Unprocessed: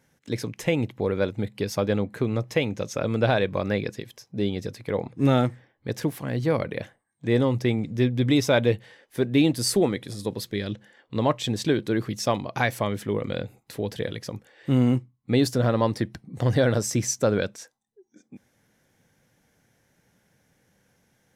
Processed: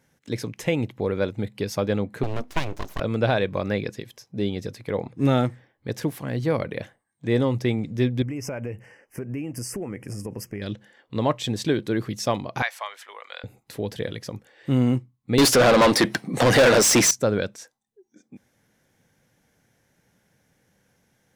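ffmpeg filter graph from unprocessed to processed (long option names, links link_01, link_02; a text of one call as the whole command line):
ffmpeg -i in.wav -filter_complex "[0:a]asettb=1/sr,asplit=3[link_01][link_02][link_03];[link_01]atrim=end=2.234[link_04];[link_02]atrim=start=2.23:end=3,asetpts=PTS-STARTPTS,afade=type=in:duration=0.004:curve=qsin,afade=type=out:start_time=0.766:duration=0.004:curve=qsin,acrossover=split=3100[link_05][link_06];[link_06]acompressor=threshold=-41dB:ratio=4:attack=1:release=60[link_07];[link_05][link_07]amix=inputs=2:normalize=0,aeval=exprs='abs(val(0))':channel_layout=same[link_08];[link_03]atrim=start=2.996[link_09];[link_04][link_08]acrossfade=duration=0.004:curve1=hsin:curve2=qsin[link_10];[link_10][link_09]acrossfade=duration=0.004:curve1=qsin:curve2=hsin,asettb=1/sr,asplit=3[link_11][link_12][link_13];[link_11]atrim=end=8.224[link_14];[link_12]atrim=start=8.22:end=10.62,asetpts=PTS-STARTPTS,afade=type=in:duration=0.004:curve=qsin,afade=type=out:start_time=2.396:duration=0.004:curve=qsin,lowshelf=frequency=140:gain=5,acompressor=threshold=-27dB:ratio=12:attack=3.2:release=140:knee=1:detection=peak,asuperstop=centerf=3800:order=8:qfactor=1.8[link_15];[link_13]atrim=start=10.616[link_16];[link_14][link_15]acrossfade=duration=0.004:curve1=hsin:curve2=qsin[link_17];[link_17][link_16]acrossfade=duration=0.004:curve1=qsin:curve2=hsin,asettb=1/sr,asplit=3[link_18][link_19][link_20];[link_18]atrim=end=12.624[link_21];[link_19]atrim=start=12.62:end=13.44,asetpts=PTS-STARTPTS,afade=type=in:duration=0.004:curve=qsin,afade=type=out:start_time=0.816:duration=0.004:curve=qsin,highpass=frequency=830:width=0.5412,highpass=frequency=830:width=1.3066,highshelf=frequency=9100:gain=-11[link_22];[link_20]atrim=start=13.436[link_23];[link_21][link_22]acrossfade=duration=0.004:curve1=hsin:curve2=qsin[link_24];[link_24][link_23]acrossfade=duration=0.004:curve1=qsin:curve2=hsin,asettb=1/sr,asplit=3[link_25][link_26][link_27];[link_25]atrim=end=15.384[link_28];[link_26]atrim=start=15.38:end=17.11,asetpts=PTS-STARTPTS,afade=type=in:duration=0.004:curve=qsin,afade=type=out:start_time=1.726:duration=0.004:curve=qsin,highpass=140,equalizer=frequency=11000:width_type=o:width=0.77:gain=4,asplit=2[link_29][link_30];[link_30]highpass=frequency=720:poles=1,volume=30dB,asoftclip=type=tanh:threshold=-8dB[link_31];[link_29][link_31]amix=inputs=2:normalize=0,lowpass=frequency=5900:poles=1,volume=-6dB[link_32];[link_27]atrim=start=17.106[link_33];[link_28][link_32]acrossfade=duration=0.004:curve1=hsin:curve2=qsin[link_34];[link_34][link_33]acrossfade=duration=0.004:curve1=qsin:curve2=hsin" out.wav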